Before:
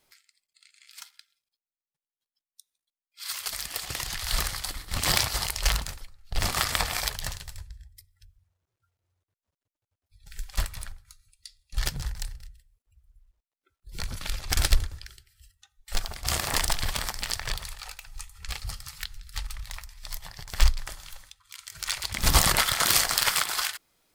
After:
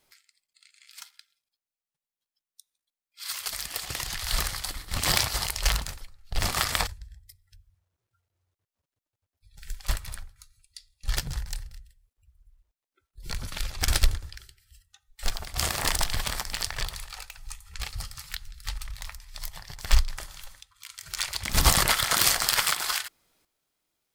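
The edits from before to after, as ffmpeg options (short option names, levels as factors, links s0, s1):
-filter_complex "[0:a]asplit=2[s0][s1];[s0]atrim=end=6.872[s2];[s1]atrim=start=7.558[s3];[s2][s3]acrossfade=d=0.004:c1=hsin:c2=hsin"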